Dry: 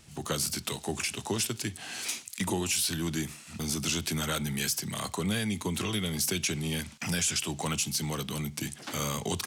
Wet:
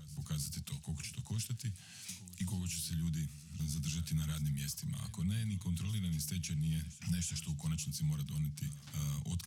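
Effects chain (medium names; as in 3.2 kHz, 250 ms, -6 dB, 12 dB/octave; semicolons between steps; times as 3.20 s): FFT filter 160 Hz 0 dB, 330 Hz -28 dB, 5.3 kHz -12 dB; reverse echo 313 ms -15.5 dB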